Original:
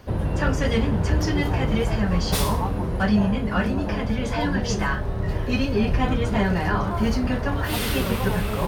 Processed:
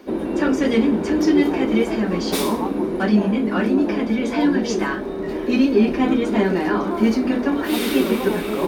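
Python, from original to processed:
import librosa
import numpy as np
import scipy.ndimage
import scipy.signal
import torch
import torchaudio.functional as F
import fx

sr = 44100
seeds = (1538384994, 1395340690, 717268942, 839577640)

y = fx.low_shelf_res(x, sr, hz=160.0, db=-14.0, q=3.0)
y = fx.hum_notches(y, sr, base_hz=50, count=5)
y = fx.small_body(y, sr, hz=(350.0, 2300.0, 3700.0), ring_ms=35, db=10)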